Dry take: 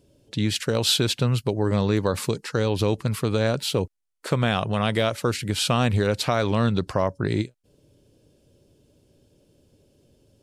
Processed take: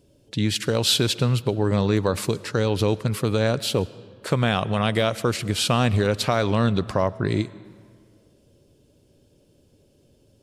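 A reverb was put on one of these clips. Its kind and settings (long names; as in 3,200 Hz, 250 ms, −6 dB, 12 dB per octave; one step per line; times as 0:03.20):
comb and all-pass reverb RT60 2 s, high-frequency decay 0.65×, pre-delay 70 ms, DRR 19 dB
level +1 dB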